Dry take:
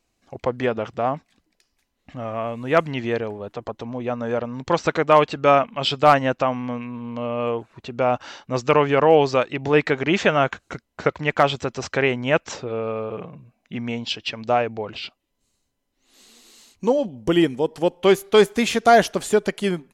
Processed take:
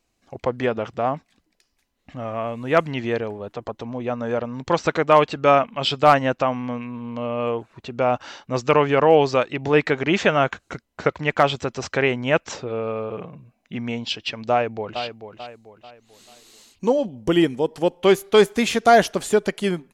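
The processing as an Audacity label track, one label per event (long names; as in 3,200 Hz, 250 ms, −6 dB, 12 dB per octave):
14.510000	15.020000	delay throw 440 ms, feedback 40%, level −9.5 dB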